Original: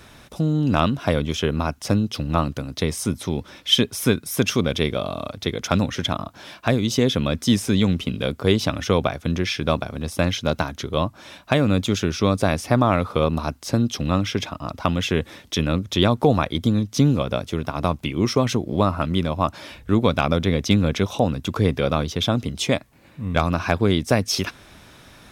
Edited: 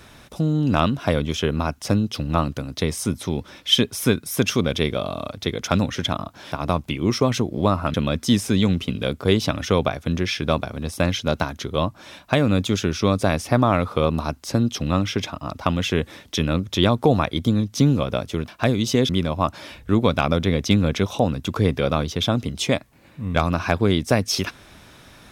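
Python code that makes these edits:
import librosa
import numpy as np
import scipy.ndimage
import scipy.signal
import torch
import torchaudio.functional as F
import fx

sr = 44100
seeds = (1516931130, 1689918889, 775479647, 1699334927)

y = fx.edit(x, sr, fx.swap(start_s=6.52, length_s=0.61, other_s=17.67, other_length_s=1.42), tone=tone)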